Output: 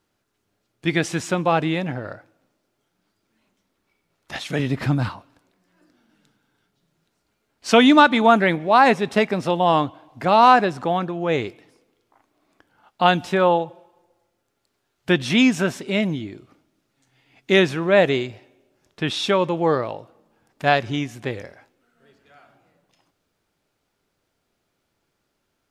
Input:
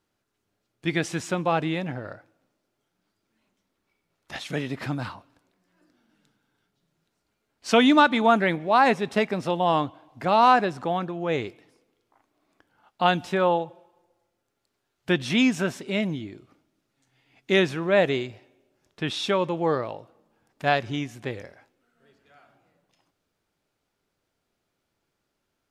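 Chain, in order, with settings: 4.59–5.09 s: bass shelf 180 Hz +10 dB; trim +4.5 dB

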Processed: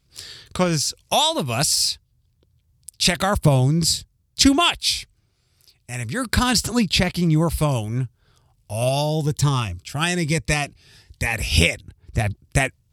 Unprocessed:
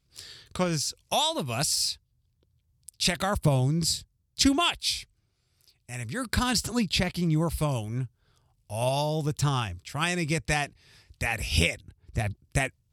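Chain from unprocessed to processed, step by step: 8.73–11.34 s: Shepard-style phaser rising 1.1 Hz; trim +7 dB

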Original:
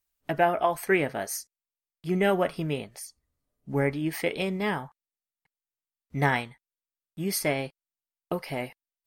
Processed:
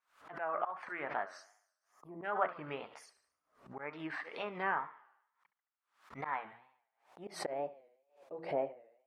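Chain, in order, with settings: time-frequency box 1.91–2.24 s, 1.2–9.5 kHz -24 dB; hum notches 60/120/180/240/300/360 Hz; slow attack 233 ms; on a send: thinning echo 71 ms, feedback 49%, high-pass 260 Hz, level -16 dB; on the sum: wow and flutter 140 cents; band-pass sweep 1.2 kHz -> 550 Hz, 6.11–8.08 s; in parallel at 0 dB: compression, threshold -54 dBFS, peak gain reduction 22 dB; on the sum: low-pass that closes with the level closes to 2.2 kHz, closed at -37 dBFS; swell ahead of each attack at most 140 dB/s; trim +2.5 dB

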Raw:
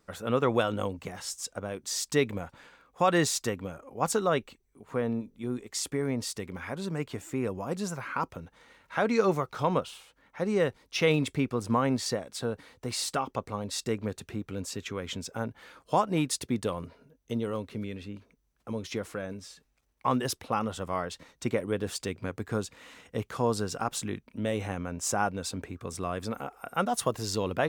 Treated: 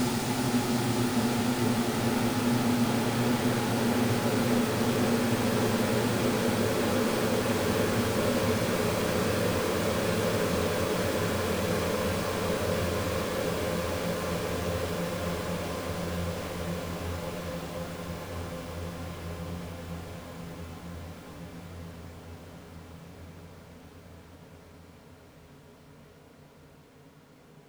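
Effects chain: square wave that keeps the level; Paulstretch 47×, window 0.50 s, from 16.49 s

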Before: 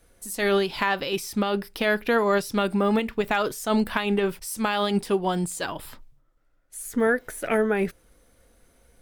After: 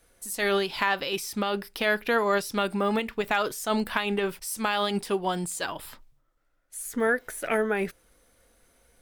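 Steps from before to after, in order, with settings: bass shelf 460 Hz -6.5 dB

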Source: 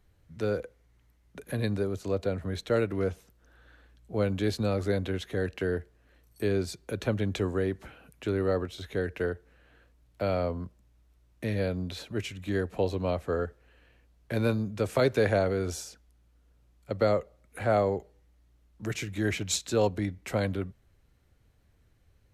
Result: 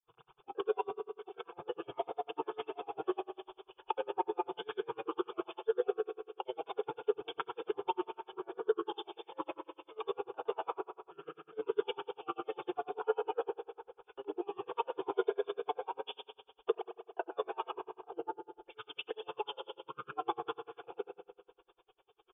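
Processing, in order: slices played last to first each 132 ms, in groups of 3; tilt EQ +3.5 dB/octave; echo from a far wall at 22 m, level -7 dB; compression 4:1, threshold -44 dBFS, peak gain reduction 21.5 dB; comb 4.2 ms, depth 92%; granulator, pitch spread up and down by 12 st; brick-wall FIR low-pass 3.6 kHz; resonant low shelf 300 Hz -13 dB, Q 3; static phaser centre 390 Hz, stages 8; spring tank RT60 1.5 s, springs 32 ms, chirp 65 ms, DRR 4.5 dB; logarithmic tremolo 10 Hz, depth 36 dB; trim +11.5 dB

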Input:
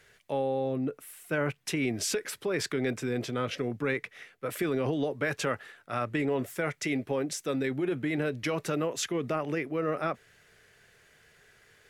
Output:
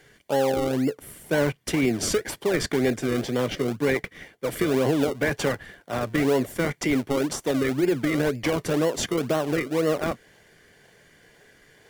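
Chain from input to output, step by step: high-pass 88 Hz 24 dB/octave; comb of notches 1.3 kHz; in parallel at -4.5 dB: decimation with a swept rate 36×, swing 100% 2 Hz; on the sum: trim +4.5 dB

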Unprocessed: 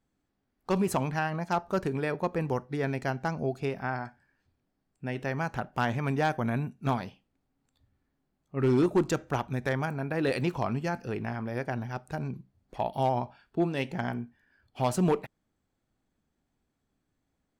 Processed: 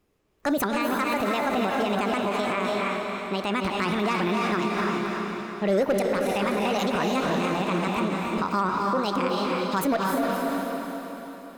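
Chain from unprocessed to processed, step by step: echo that smears into a reverb 462 ms, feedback 56%, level -3 dB; wide varispeed 1.52×; peak limiter -24.5 dBFS, peak gain reduction 11 dB; trim +8 dB

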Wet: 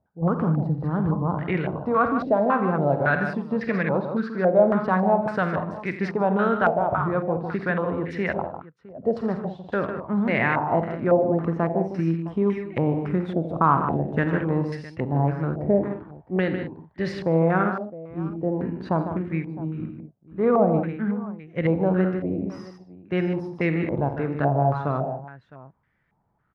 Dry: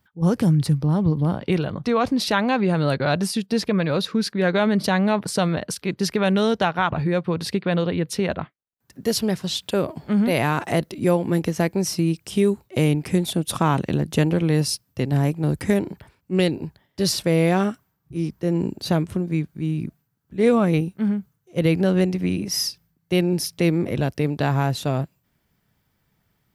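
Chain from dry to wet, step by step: on a send: multi-tap echo 49/85/151/199/661 ms -11.5/-12.5/-8.5/-13.5/-18.5 dB; on the sum: step-sequenced low-pass 3.6 Hz 650–1900 Hz; trim -5 dB

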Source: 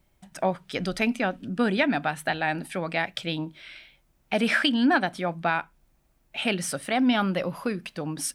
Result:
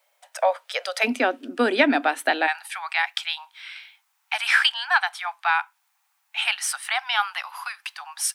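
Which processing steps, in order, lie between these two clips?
steep high-pass 500 Hz 72 dB/octave, from 1.03 s 250 Hz, from 2.46 s 790 Hz; trim +5.5 dB

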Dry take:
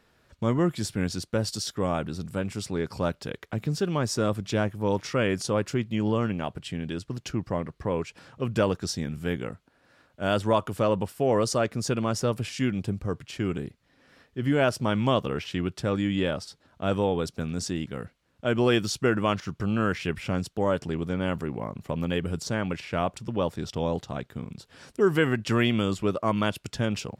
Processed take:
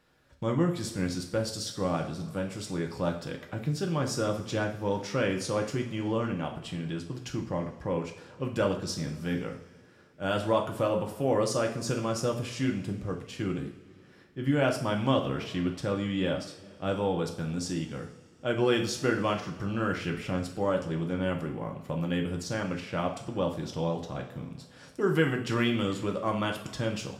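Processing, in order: two-slope reverb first 0.48 s, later 2.6 s, from -18 dB, DRR 2 dB; trim -5 dB

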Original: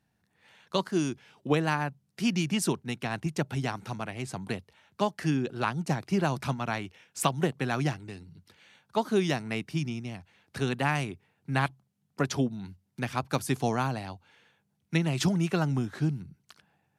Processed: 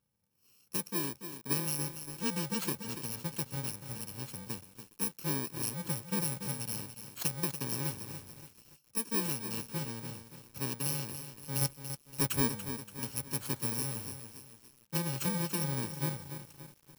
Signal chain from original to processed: bit-reversed sample order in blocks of 64 samples; 11.61–12.50 s: waveshaping leveller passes 2; bit-crushed delay 286 ms, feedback 55%, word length 7-bit, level -9 dB; trim -7 dB

